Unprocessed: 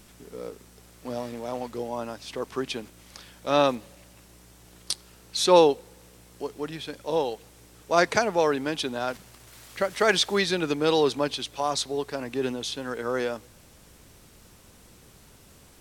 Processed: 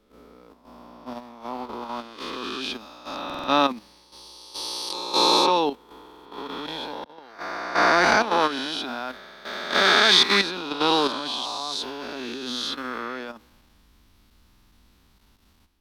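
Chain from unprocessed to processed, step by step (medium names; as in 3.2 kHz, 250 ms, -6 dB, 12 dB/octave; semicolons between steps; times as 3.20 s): reverse spectral sustain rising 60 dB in 2.50 s; slow attack 418 ms; level held to a coarse grid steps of 10 dB; graphic EQ 125/250/500/1000/4000/8000 Hz -11/+7/-8/+5/+6/-9 dB; buffer glitch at 3.25/6.02/9.22/14.48 s, samples 2048, times 4; three bands expanded up and down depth 40%; trim -1 dB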